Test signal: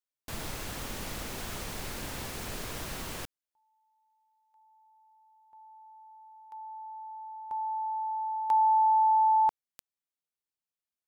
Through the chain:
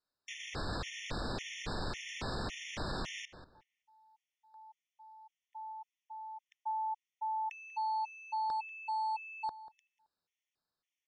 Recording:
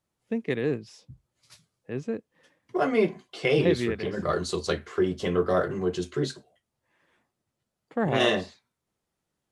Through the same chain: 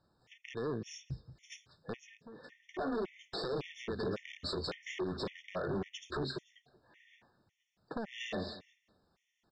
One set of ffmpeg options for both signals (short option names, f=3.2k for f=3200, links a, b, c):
-filter_complex "[0:a]acompressor=threshold=-38dB:ratio=16:attack=3.7:release=118:knee=1:detection=rms,aeval=exprs='0.0119*(abs(mod(val(0)/0.0119+3,4)-2)-1)':c=same,lowpass=f=5.8k:w=0.5412,lowpass=f=5.8k:w=1.3066,asplit=2[a][b];[b]adelay=190,lowpass=f=3.5k:p=1,volume=-15dB,asplit=2[c][d];[d]adelay=190,lowpass=f=3.5k:p=1,volume=0.25,asplit=2[e][f];[f]adelay=190,lowpass=f=3.5k:p=1,volume=0.25[g];[c][e][g]amix=inputs=3:normalize=0[h];[a][h]amix=inputs=2:normalize=0,afftfilt=real='re*gt(sin(2*PI*1.8*pts/sr)*(1-2*mod(floor(b*sr/1024/1800),2)),0)':imag='im*gt(sin(2*PI*1.8*pts/sr)*(1-2*mod(floor(b*sr/1024/1800),2)),0)':win_size=1024:overlap=0.75,volume=9dB"